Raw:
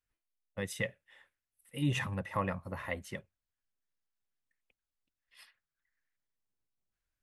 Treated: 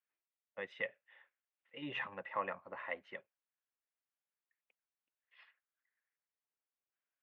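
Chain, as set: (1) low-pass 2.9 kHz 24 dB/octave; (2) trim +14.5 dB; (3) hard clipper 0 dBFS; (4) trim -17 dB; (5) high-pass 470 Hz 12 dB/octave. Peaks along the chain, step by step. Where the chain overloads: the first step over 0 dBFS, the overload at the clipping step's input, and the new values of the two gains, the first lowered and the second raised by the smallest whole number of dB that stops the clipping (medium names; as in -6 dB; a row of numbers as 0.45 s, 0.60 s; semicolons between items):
-19.0 dBFS, -4.5 dBFS, -4.5 dBFS, -21.5 dBFS, -23.0 dBFS; nothing clips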